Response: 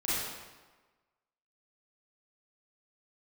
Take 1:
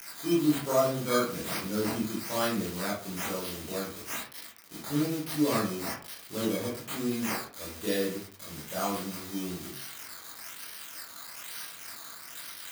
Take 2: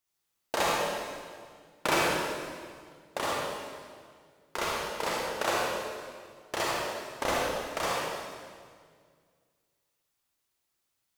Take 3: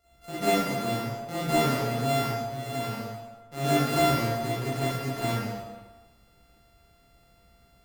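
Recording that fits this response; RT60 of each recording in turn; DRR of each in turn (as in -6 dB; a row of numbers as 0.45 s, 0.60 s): 3; 0.45 s, 1.9 s, 1.3 s; -7.0 dB, -5.0 dB, -10.5 dB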